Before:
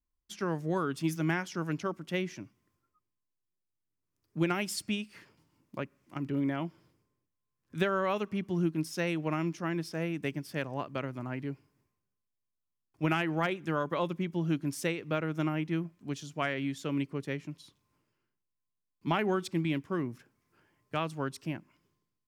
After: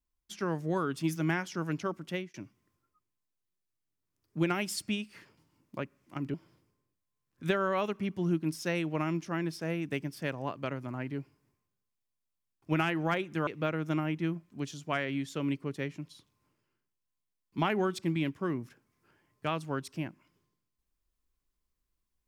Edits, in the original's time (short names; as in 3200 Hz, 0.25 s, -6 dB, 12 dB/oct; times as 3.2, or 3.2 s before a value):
2.09–2.34 fade out
6.34–6.66 cut
13.79–14.96 cut